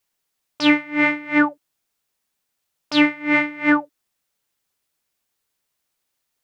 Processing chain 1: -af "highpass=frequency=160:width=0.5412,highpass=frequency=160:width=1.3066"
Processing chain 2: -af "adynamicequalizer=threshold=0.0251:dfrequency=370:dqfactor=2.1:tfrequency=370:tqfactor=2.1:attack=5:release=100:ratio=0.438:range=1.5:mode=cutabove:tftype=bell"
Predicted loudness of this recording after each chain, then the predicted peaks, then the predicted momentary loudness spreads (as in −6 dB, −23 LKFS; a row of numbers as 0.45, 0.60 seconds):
−19.0, −19.0 LKFS; −2.5, −3.0 dBFS; 4, 4 LU